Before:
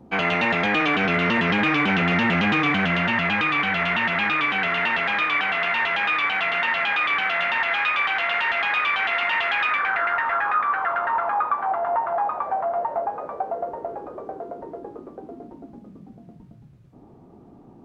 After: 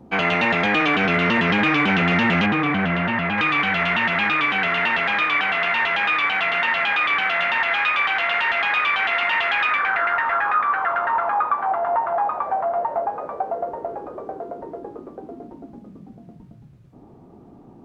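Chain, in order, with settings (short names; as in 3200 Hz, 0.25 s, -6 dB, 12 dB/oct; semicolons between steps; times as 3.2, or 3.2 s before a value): 2.46–3.38 LPF 1600 Hz 6 dB/oct; gain +2 dB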